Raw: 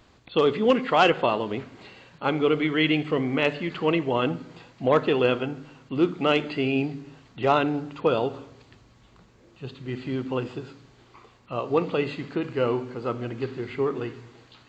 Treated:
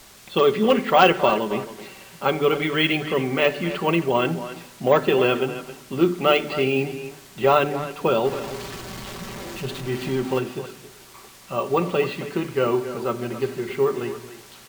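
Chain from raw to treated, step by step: 8.25–10.39 zero-crossing step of -32.5 dBFS; notches 50/100/150/200/250/300/350 Hz; comb 5.2 ms, depth 58%; requantised 8-bit, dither triangular; careless resampling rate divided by 2×, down filtered, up hold; speakerphone echo 0.27 s, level -12 dB; gain +2.5 dB

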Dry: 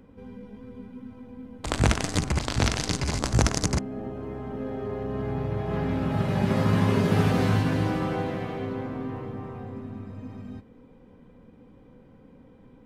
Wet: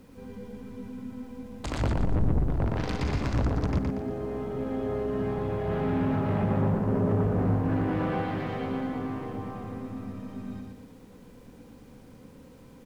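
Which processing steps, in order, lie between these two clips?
1.94–2.5 RIAA curve playback; treble ducked by the level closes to 740 Hz, closed at -18 dBFS; soft clip -22.5 dBFS, distortion -5 dB; added noise pink -64 dBFS; on a send: feedback echo 0.118 s, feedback 41%, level -3.5 dB; on the sum: Doppler distortion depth 0.17 ms

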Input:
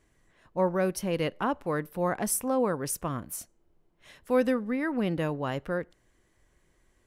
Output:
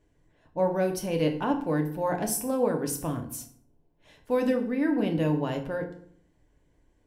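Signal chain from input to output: thirty-one-band EQ 1250 Hz -10 dB, 2000 Hz -5 dB, 10000 Hz -4 dB; FDN reverb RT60 0.61 s, low-frequency decay 1.3×, high-frequency decay 0.75×, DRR 3 dB; mismatched tape noise reduction decoder only

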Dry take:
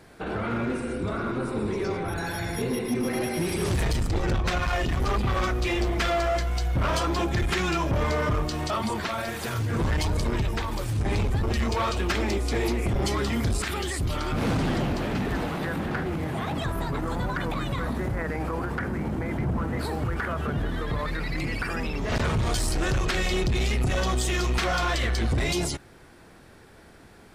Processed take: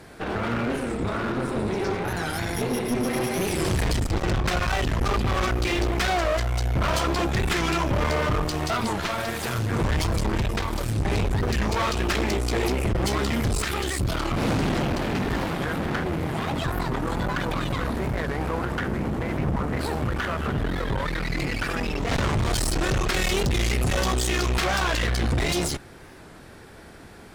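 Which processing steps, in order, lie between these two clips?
23.13–24.13 high shelf 8400 Hz +9 dB; one-sided clip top -39.5 dBFS; record warp 45 rpm, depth 160 cents; gain +5.5 dB

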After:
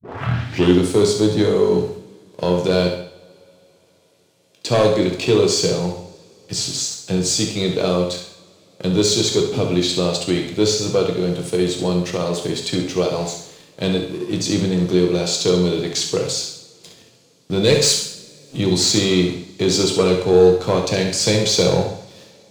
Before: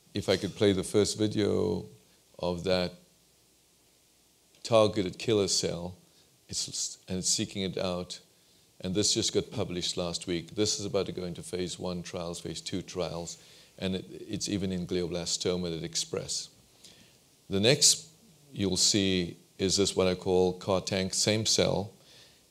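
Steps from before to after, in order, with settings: tape start at the beginning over 0.77 s; in parallel at 0 dB: compressor, threshold -33 dBFS, peak gain reduction 15.5 dB; on the sum: HPF 97 Hz 24 dB/oct; sample leveller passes 2; high shelf 6200 Hz -8.5 dB; on a send: flutter echo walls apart 11.6 m, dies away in 0.49 s; on the sum: two-slope reverb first 0.58 s, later 4 s, from -27 dB, DRR 3 dB

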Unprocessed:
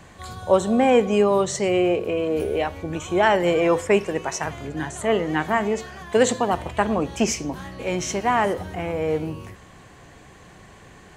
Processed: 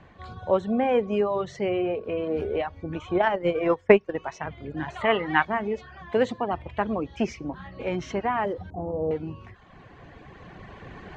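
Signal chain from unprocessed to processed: recorder AGC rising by 5.6 dB/s; reverb removal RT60 0.76 s; 3.14–4.16 transient shaper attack +11 dB, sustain -12 dB; 4.88–5.45 band shelf 1800 Hz +11 dB 2.8 oct; 8.7–9.11 inverse Chebyshev band-stop 1800–4600 Hz, stop band 50 dB; air absorption 260 m; gain -4 dB

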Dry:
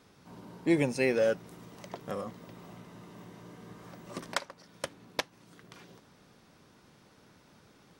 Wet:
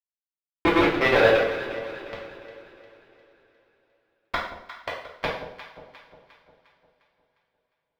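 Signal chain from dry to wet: local time reversal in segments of 72 ms; HPF 260 Hz 24 dB/oct; bit-crush 4-bit; air absorption 360 m; on a send: echo with dull and thin repeats by turns 0.177 s, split 870 Hz, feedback 69%, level -9.5 dB; on the sum: two-slope reverb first 0.58 s, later 4.5 s, from -27 dB, DRR -5.5 dB; gain +4.5 dB

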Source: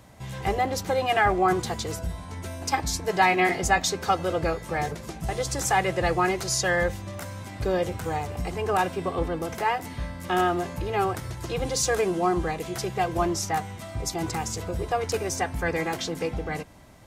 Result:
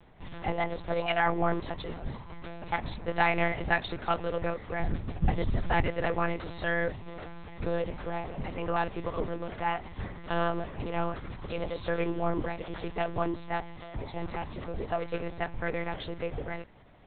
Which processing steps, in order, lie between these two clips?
4.81–5.88 resonant low shelf 210 Hz +10.5 dB, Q 1.5; monotone LPC vocoder at 8 kHz 170 Hz; gain -5 dB

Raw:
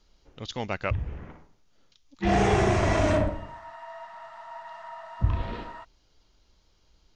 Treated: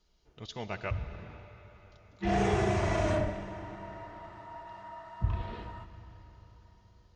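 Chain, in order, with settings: notch comb 270 Hz; on a send: reverb RT60 4.9 s, pre-delay 20 ms, DRR 9.5 dB; on the sum: gain -5.5 dB

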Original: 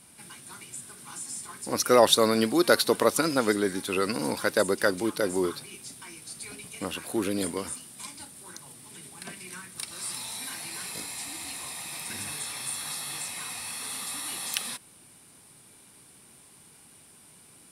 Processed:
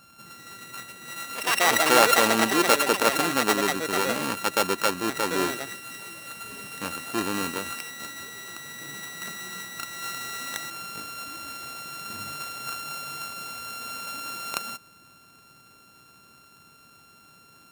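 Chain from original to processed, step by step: sample sorter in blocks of 32 samples; echoes that change speed 0.259 s, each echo +6 st, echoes 2

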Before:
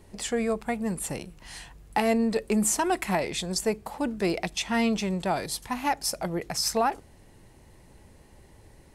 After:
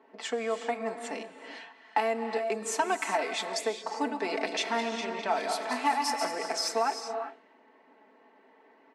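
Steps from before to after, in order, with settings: 3.88–6.57 regenerating reverse delay 0.103 s, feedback 58%, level -6 dB; Bessel low-pass 7400 Hz, order 2; comb 4.5 ms, depth 70%; compressor, threshold -22 dBFS, peak gain reduction 8 dB; elliptic high-pass 280 Hz, stop band 60 dB; bell 390 Hz -8.5 dB 1.8 oct; non-linear reverb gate 0.43 s rising, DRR 7.5 dB; low-pass opened by the level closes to 2000 Hz, open at -28.5 dBFS; high shelf 2500 Hz -9.5 dB; gain +5 dB

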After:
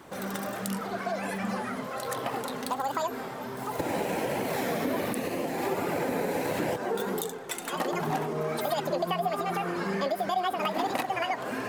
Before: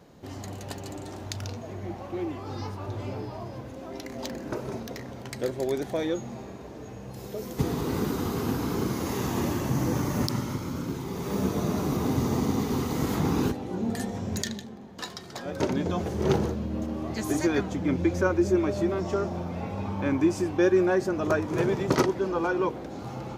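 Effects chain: compressor 4:1, threshold -31 dBFS, peak gain reduction 12 dB; flange 0.68 Hz, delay 1.1 ms, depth 8.8 ms, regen -48%; speed mistake 7.5 ips tape played at 15 ips; gain +8 dB

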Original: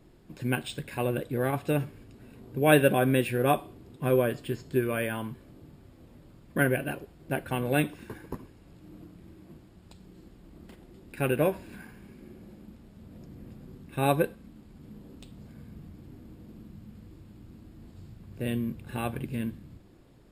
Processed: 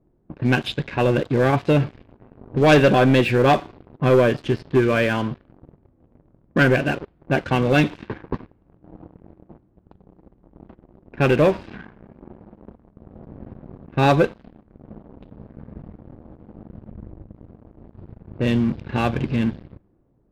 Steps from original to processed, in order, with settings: downsampling 11025 Hz; sample leveller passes 3; 16.91–17.35 tilt -2 dB/oct; low-pass opened by the level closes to 860 Hz, open at -17.5 dBFS; 12.57–13.13 Doppler distortion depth 0.71 ms

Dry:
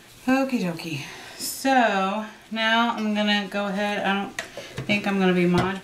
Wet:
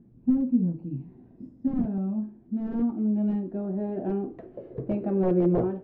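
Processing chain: wrapped overs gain 12.5 dB; low-pass sweep 230 Hz -> 470 Hz, 1.75–5.07; gain -4 dB

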